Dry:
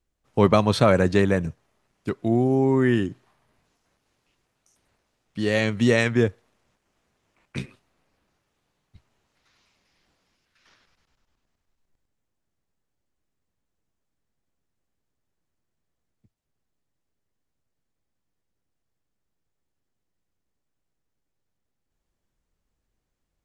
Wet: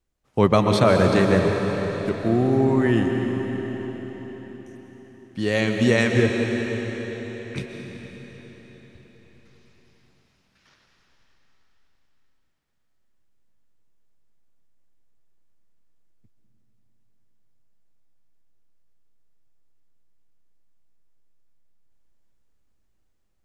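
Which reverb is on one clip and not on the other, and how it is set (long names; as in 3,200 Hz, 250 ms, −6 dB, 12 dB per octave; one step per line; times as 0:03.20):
comb and all-pass reverb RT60 5 s, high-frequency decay 0.95×, pre-delay 90 ms, DRR 2 dB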